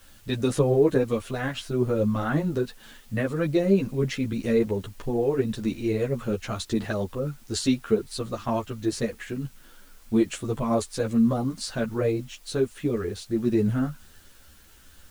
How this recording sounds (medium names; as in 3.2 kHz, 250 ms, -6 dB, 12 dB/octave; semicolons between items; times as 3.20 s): tremolo triangle 0.53 Hz, depth 35%; a quantiser's noise floor 10-bit, dither triangular; a shimmering, thickened sound